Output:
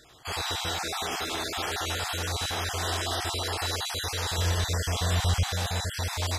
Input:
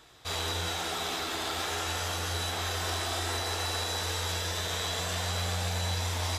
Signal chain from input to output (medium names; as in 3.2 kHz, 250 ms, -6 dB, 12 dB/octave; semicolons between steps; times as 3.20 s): random holes in the spectrogram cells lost 25%; 4.38–5.46 s: bass shelf 160 Hz +11.5 dB; trim +3 dB